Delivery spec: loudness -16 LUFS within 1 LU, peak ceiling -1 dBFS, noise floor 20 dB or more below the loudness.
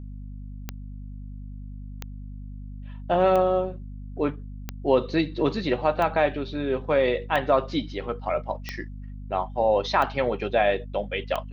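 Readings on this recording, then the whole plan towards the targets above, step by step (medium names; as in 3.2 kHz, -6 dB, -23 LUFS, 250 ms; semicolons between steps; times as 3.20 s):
clicks found 9; hum 50 Hz; highest harmonic 250 Hz; hum level -35 dBFS; loudness -25.0 LUFS; peak level -7.5 dBFS; loudness target -16.0 LUFS
-> de-click; de-hum 50 Hz, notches 5; trim +9 dB; peak limiter -1 dBFS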